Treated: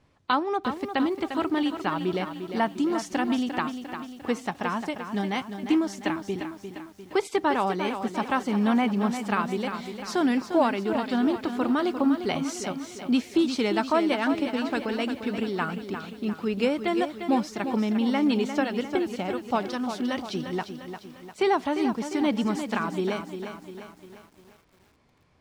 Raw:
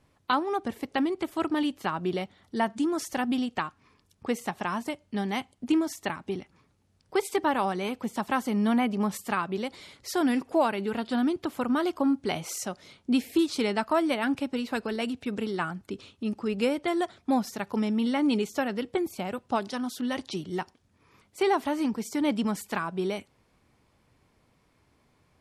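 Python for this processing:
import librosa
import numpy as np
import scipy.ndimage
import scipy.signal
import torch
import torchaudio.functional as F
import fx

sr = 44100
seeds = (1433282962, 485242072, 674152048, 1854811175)

y = scipy.signal.sosfilt(scipy.signal.butter(2, 6700.0, 'lowpass', fs=sr, output='sos'), x)
y = fx.echo_crushed(y, sr, ms=350, feedback_pct=55, bits=9, wet_db=-8.5)
y = F.gain(torch.from_numpy(y), 1.5).numpy()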